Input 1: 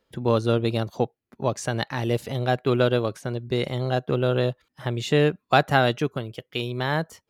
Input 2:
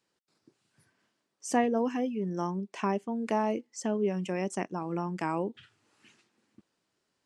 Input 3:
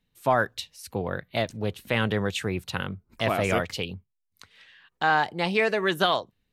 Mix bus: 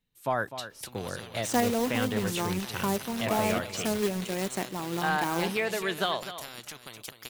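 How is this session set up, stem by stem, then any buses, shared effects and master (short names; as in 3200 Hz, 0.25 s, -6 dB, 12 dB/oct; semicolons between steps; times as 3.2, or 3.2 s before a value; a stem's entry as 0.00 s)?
-8.0 dB, 0.70 s, no send, echo send -10 dB, compressor 12:1, threshold -28 dBFS, peak gain reduction 16 dB; spectral compressor 4:1
-0.5 dB, 0.00 s, no send, echo send -20.5 dB, companded quantiser 4-bit
-6.5 dB, 0.00 s, no send, echo send -12 dB, dry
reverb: off
echo: echo 0.252 s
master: high shelf 5900 Hz +5.5 dB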